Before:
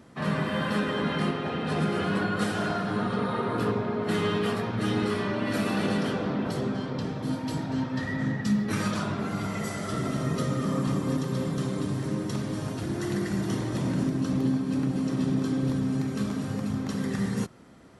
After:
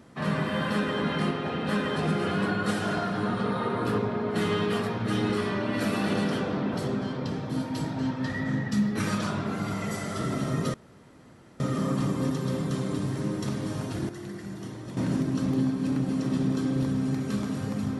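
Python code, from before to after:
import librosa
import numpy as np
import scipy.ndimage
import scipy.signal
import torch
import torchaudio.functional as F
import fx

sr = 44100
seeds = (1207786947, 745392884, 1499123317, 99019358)

y = fx.edit(x, sr, fx.duplicate(start_s=0.72, length_s=0.27, to_s=1.69),
    fx.insert_room_tone(at_s=10.47, length_s=0.86),
    fx.clip_gain(start_s=12.96, length_s=0.88, db=-9.5), tone=tone)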